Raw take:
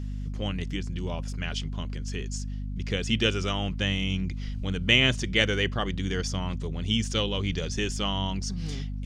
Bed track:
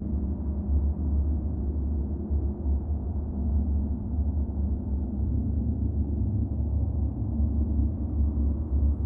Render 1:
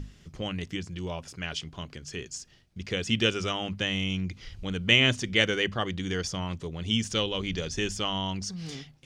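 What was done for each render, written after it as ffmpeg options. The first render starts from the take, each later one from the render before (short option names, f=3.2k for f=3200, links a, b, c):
-af "bandreject=f=50:t=h:w=6,bandreject=f=100:t=h:w=6,bandreject=f=150:t=h:w=6,bandreject=f=200:t=h:w=6,bandreject=f=250:t=h:w=6"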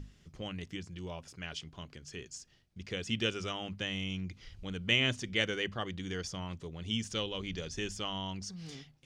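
-af "volume=-7.5dB"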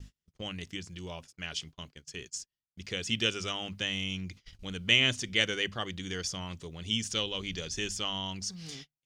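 -af "agate=range=-33dB:threshold=-48dB:ratio=16:detection=peak,highshelf=f=2.5k:g=9"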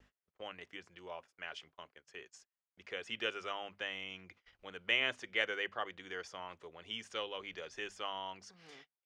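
-filter_complex "[0:a]acrossover=split=430 2200:gain=0.0631 1 0.0891[a][b][c];[a][b][c]amix=inputs=3:normalize=0"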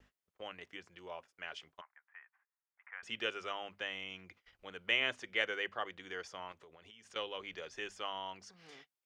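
-filter_complex "[0:a]asettb=1/sr,asplit=3[a][b][c];[a]atrim=end=1.814[d];[b]atrim=start=1.81:end=3.03,asetpts=PTS-STARTPTS,afade=t=in:d=0.004:c=qsin,afade=t=out:st=1.216:d=0.004:c=qsin,asuperpass=centerf=1300:order=8:qfactor=1[e];[c]atrim=start=3.026[f];[d][e]acrossfade=d=0.004:c1=hsin:c2=qsin[g];[g][f]acrossfade=d=0.004:c1=qsin:c2=hsin,asettb=1/sr,asplit=3[h][i][j];[h]atrim=end=6.524[k];[i]atrim=start=6.52:end=7.16,asetpts=PTS-STARTPTS,afade=t=in:d=0.004:c=qsin,afade=t=out:st=0.636:d=0.004:c=qsin,acompressor=threshold=-54dB:ratio=8:attack=3.2:release=140:knee=1:detection=peak[l];[j]atrim=start=7.156[m];[k][l]acrossfade=d=0.004:c1=hsin:c2=qsin[n];[n][m]acrossfade=d=0.004:c1=qsin:c2=hsin"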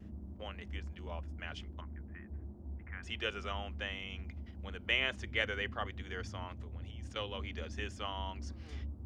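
-filter_complex "[1:a]volume=-18dB[a];[0:a][a]amix=inputs=2:normalize=0"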